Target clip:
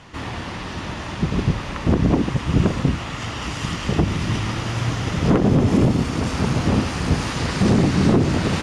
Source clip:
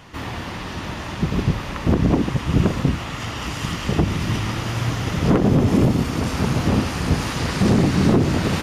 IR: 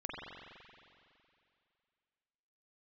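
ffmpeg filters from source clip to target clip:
-af "lowpass=f=10k:w=0.5412,lowpass=f=10k:w=1.3066"

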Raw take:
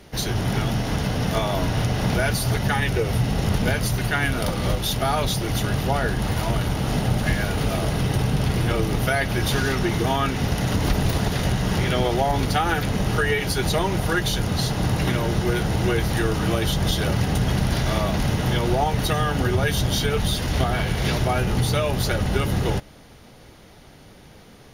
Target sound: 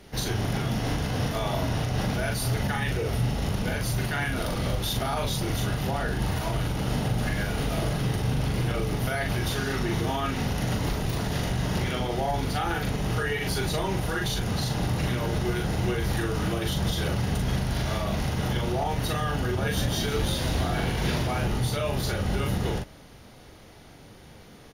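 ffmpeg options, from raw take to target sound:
-filter_complex "[0:a]alimiter=limit=-16.5dB:level=0:latency=1:release=92,asplit=2[a][b];[b]adelay=41,volume=-3dB[c];[a][c]amix=inputs=2:normalize=0,asettb=1/sr,asplit=3[d][e][f];[d]atrim=end=19.424[g];[e]atrim=start=19.42:end=21.48,asetpts=PTS-STARTPTS,afade=t=in:d=0.004:c=qsin,afade=t=out:st=2.056:d=0.004:c=qsin,asplit=9[h][i][j][k][l][m][n][o][p];[i]adelay=159,afreqshift=96,volume=-10dB[q];[j]adelay=318,afreqshift=192,volume=-14dB[r];[k]adelay=477,afreqshift=288,volume=-18dB[s];[l]adelay=636,afreqshift=384,volume=-22dB[t];[m]adelay=795,afreqshift=480,volume=-26.1dB[u];[n]adelay=954,afreqshift=576,volume=-30.1dB[v];[o]adelay=1113,afreqshift=672,volume=-34.1dB[w];[p]adelay=1272,afreqshift=768,volume=-38.1dB[x];[h][q][r][s][t][u][v][w][x]amix=inputs=9:normalize=0,atrim=end_sample=90846[y];[f]atrim=start=21.476[z];[g][y]acrossfade=d=0.004:c1=hsin:c2=qsin[aa];[aa][z]acrossfade=d=0.004:c1=qsin:c2=hsin,volume=-3.5dB"

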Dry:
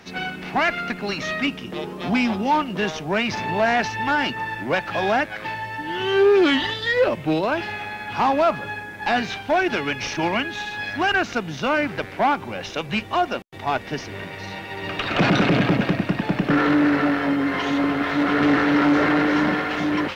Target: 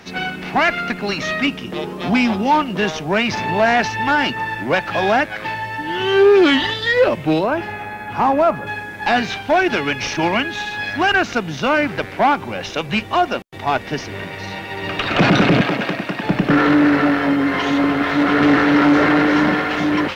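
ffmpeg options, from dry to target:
-filter_complex "[0:a]asettb=1/sr,asplit=3[a][b][c];[a]atrim=end=7.434[d];[b]atrim=start=7.43:end=8.67,asetpts=PTS-STARTPTS,afade=t=in:d=0.004:c=qsin,afade=t=out:st=1.236:d=0.004:c=qsin,equalizer=f=4.1k:t=o:w=1.8:g=-10.5[e];[c]atrim=start=8.666[f];[d][e]acrossfade=d=0.004:c1=hsin:c2=qsin[g];[g][f]acrossfade=d=0.004:c1=qsin:c2=hsin,asettb=1/sr,asplit=3[h][i][j];[h]atrim=end=15.614[k];[i]atrim=start=15.61:end=16.24,asetpts=PTS-STARTPTS,afade=t=in:d=0.004:c=qsin,afade=t=out:st=0.626:d=0.004:c=qsin,highpass=f=490:p=1[l];[j]atrim=start=16.236[m];[k][l]acrossfade=d=0.004:c1=hsin:c2=qsin[n];[n][m]acrossfade=d=0.004:c1=qsin:c2=hsin,volume=4.5dB"

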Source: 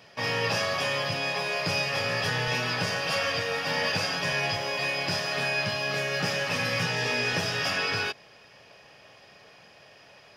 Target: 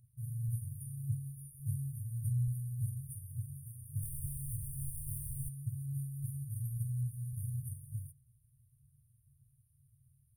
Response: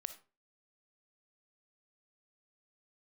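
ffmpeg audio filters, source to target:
-filter_complex "[0:a]asplit=3[a][b][c];[a]afade=t=out:st=4.01:d=0.02[d];[b]asplit=2[e][f];[f]highpass=f=720:p=1,volume=28dB,asoftclip=type=tanh:threshold=-15.5dB[g];[e][g]amix=inputs=2:normalize=0,lowpass=f=2.5k:p=1,volume=-6dB,afade=t=in:st=4.01:d=0.02,afade=t=out:st=5.48:d=0.02[h];[c]afade=t=in:st=5.48:d=0.02[i];[d][h][i]amix=inputs=3:normalize=0,aphaser=in_gain=1:out_gain=1:delay=2.2:decay=0.33:speed=1.7:type=sinusoidal,afftfilt=real='re*(1-between(b*sr/4096,140,8700))':imag='im*(1-between(b*sr/4096,140,8700))':win_size=4096:overlap=0.75"

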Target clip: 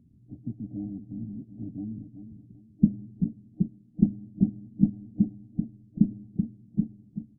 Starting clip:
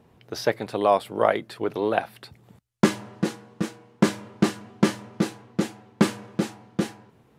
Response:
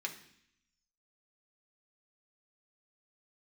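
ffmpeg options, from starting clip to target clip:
-af "aecho=1:1:384|768|1152:0.316|0.0949|0.0285,afftfilt=real='re*(1-between(b*sr/4096,310,1600))':imag='im*(1-between(b*sr/4096,310,1600))':win_size=4096:overlap=0.75" -ar 24000 -c:a mp2 -b:a 8k

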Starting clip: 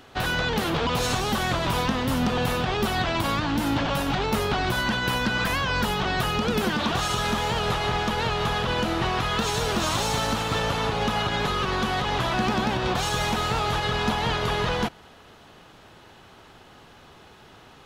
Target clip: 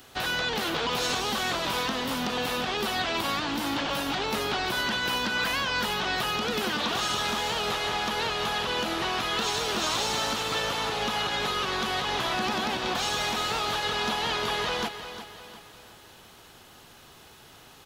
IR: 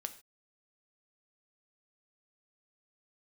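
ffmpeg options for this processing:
-filter_complex "[0:a]acrossover=split=5700[a][b];[b]acompressor=threshold=-54dB:ratio=4:attack=1:release=60[c];[a][c]amix=inputs=2:normalize=0,aemphasis=mode=production:type=75kf,acrossover=split=210[d][e];[d]acompressor=threshold=-40dB:ratio=6[f];[f][e]amix=inputs=2:normalize=0,aecho=1:1:355|710|1065|1420|1775:0.282|0.124|0.0546|0.024|0.0106,volume=-4.5dB"

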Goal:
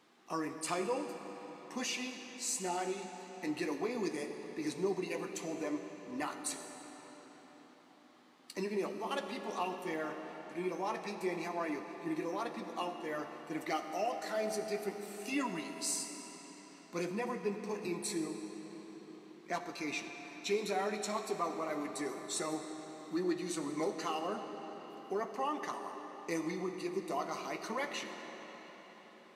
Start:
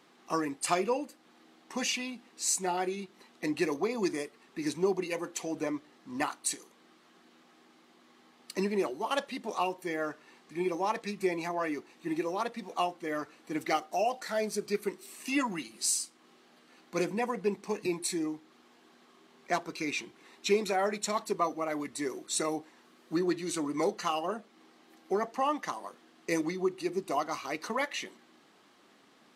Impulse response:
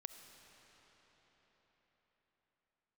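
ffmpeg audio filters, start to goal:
-filter_complex "[0:a]asplit=2[a][b];[b]alimiter=level_in=1.5dB:limit=-24dB:level=0:latency=1,volume=-1.5dB,volume=-2dB[c];[a][c]amix=inputs=2:normalize=0,flanger=delay=9.1:depth=3.6:regen=-50:speed=0.86:shape=sinusoidal[d];[1:a]atrim=start_sample=2205[e];[d][e]afir=irnorm=-1:irlink=0"

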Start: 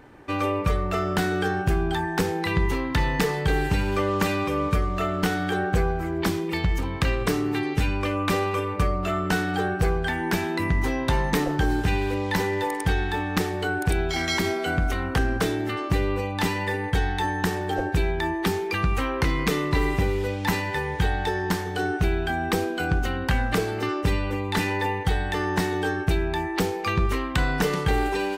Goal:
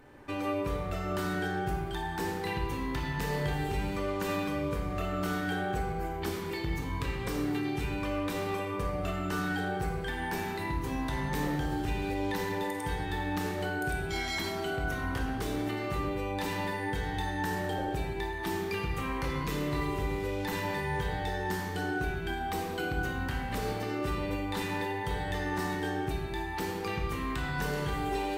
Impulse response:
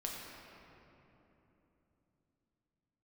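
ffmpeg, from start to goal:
-filter_complex "[0:a]highshelf=f=8.7k:g=7,alimiter=limit=-20dB:level=0:latency=1:release=130[a];[1:a]atrim=start_sample=2205,afade=t=out:st=0.26:d=0.01,atrim=end_sample=11907,asetrate=37485,aresample=44100[b];[a][b]afir=irnorm=-1:irlink=0,volume=-4.5dB"

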